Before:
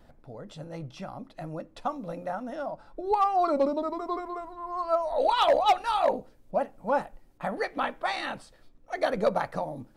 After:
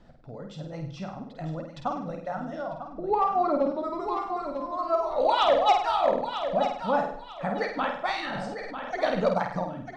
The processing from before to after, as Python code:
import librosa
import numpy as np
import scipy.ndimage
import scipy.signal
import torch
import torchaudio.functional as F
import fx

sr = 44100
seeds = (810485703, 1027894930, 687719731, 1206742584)

y = fx.echo_feedback(x, sr, ms=947, feedback_pct=29, wet_db=-9)
y = fx.dereverb_blind(y, sr, rt60_s=0.81)
y = fx.high_shelf(y, sr, hz=3000.0, db=-11.0, at=(2.7, 3.81))
y = scipy.signal.sosfilt(scipy.signal.butter(4, 7100.0, 'lowpass', fs=sr, output='sos'), y)
y = fx.peak_eq(y, sr, hz=170.0, db=5.0, octaves=0.95)
y = fx.room_flutter(y, sr, wall_m=8.6, rt60_s=0.56)
y = fx.sustainer(y, sr, db_per_s=20.0, at=(8.32, 8.96), fade=0.02)